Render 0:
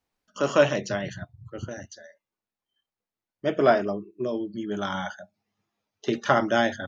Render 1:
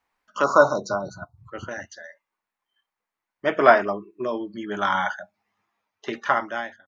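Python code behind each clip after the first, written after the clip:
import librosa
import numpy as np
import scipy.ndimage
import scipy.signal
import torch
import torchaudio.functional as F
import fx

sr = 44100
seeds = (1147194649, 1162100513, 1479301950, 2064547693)

y = fx.fade_out_tail(x, sr, length_s=1.34)
y = fx.graphic_eq_10(y, sr, hz=(125, 1000, 2000), db=(-5, 11, 9))
y = fx.spec_erase(y, sr, start_s=0.43, length_s=0.94, low_hz=1500.0, high_hz=3700.0)
y = y * 10.0 ** (-1.0 / 20.0)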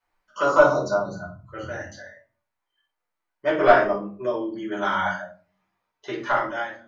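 y = 10.0 ** (-4.5 / 20.0) * np.tanh(x / 10.0 ** (-4.5 / 20.0))
y = fx.room_shoebox(y, sr, seeds[0], volume_m3=270.0, walls='furnished', distance_m=4.9)
y = y * 10.0 ** (-9.0 / 20.0)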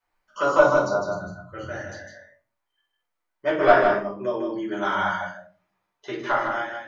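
y = x + 10.0 ** (-5.5 / 20.0) * np.pad(x, (int(155 * sr / 1000.0), 0))[:len(x)]
y = y * 10.0 ** (-1.0 / 20.0)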